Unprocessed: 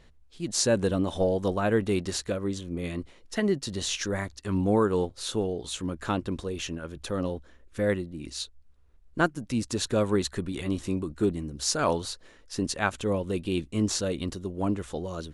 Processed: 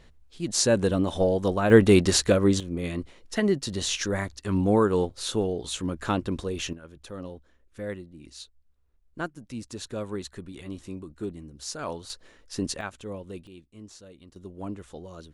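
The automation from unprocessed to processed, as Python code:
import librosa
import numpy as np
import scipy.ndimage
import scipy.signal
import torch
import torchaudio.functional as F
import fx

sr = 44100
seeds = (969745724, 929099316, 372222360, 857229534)

y = fx.gain(x, sr, db=fx.steps((0.0, 2.0), (1.7, 9.5), (2.6, 2.0), (6.73, -8.5), (12.1, -0.5), (12.81, -9.5), (13.47, -19.5), (14.36, -8.0)))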